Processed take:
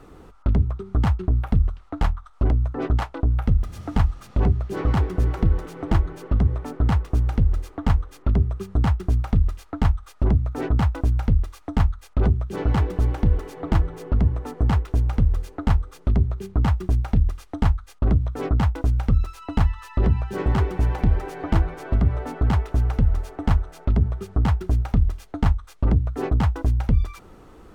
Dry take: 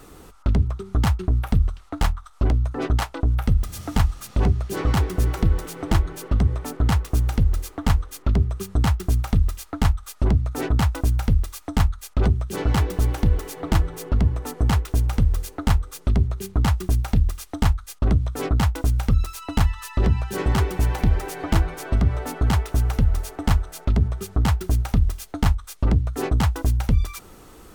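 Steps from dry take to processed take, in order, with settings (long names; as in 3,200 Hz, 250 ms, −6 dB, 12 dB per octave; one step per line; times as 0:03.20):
low-pass filter 1,600 Hz 6 dB per octave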